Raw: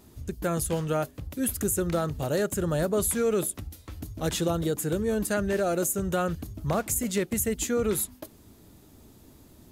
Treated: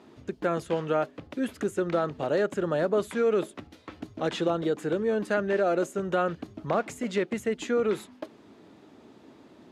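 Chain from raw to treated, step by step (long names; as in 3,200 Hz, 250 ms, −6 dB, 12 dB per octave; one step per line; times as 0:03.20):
in parallel at −0.5 dB: downward compressor, threshold −34 dBFS, peak gain reduction 12 dB
on the sum: band-pass filter 260–2,900 Hz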